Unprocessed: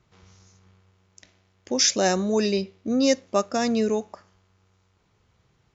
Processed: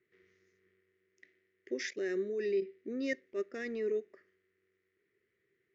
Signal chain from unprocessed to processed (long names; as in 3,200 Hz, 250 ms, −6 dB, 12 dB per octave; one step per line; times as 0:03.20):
0:01.89–0:02.62: output level in coarse steps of 13 dB
pair of resonant band-passes 860 Hz, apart 2.3 octaves
0:03.13–0:04.13: transient designer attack −8 dB, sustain −3 dB